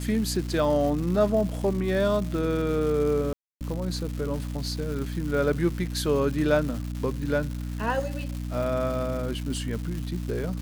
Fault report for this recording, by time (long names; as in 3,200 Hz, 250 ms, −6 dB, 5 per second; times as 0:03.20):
surface crackle 380 per second −33 dBFS
mains hum 60 Hz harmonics 5 −32 dBFS
0:03.33–0:03.61: drop-out 278 ms